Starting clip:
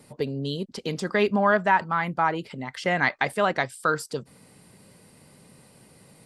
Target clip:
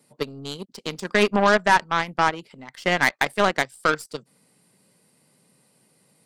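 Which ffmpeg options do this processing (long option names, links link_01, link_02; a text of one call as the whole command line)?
ffmpeg -i in.wav -af "highpass=frequency=130:width=0.5412,highpass=frequency=130:width=1.3066,highshelf=frequency=4200:gain=5.5,acontrast=37,aeval=exprs='0.668*(cos(1*acos(clip(val(0)/0.668,-1,1)))-cos(1*PI/2))+0.0299*(cos(4*acos(clip(val(0)/0.668,-1,1)))-cos(4*PI/2))+0.075*(cos(7*acos(clip(val(0)/0.668,-1,1)))-cos(7*PI/2))':channel_layout=same,volume=-2dB" out.wav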